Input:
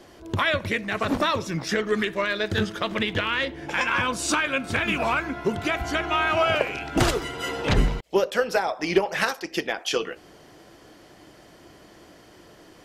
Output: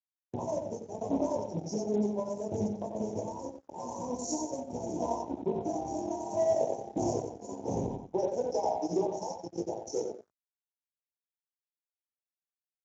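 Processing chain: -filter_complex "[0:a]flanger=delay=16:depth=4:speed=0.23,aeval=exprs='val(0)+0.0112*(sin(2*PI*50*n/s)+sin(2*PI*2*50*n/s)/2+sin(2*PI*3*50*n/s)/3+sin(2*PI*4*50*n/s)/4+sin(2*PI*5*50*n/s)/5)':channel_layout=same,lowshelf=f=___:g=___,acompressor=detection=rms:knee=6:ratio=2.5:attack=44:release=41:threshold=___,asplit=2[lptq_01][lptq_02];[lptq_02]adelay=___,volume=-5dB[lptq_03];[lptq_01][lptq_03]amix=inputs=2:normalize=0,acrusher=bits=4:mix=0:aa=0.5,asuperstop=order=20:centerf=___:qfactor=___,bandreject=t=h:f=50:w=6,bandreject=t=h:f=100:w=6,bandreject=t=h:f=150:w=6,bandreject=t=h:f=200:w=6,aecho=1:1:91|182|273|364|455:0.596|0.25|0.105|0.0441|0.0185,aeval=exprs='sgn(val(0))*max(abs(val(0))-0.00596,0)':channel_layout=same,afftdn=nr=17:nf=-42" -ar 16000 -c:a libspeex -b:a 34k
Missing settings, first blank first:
110, -8.5, -32dB, 29, 2300, 0.52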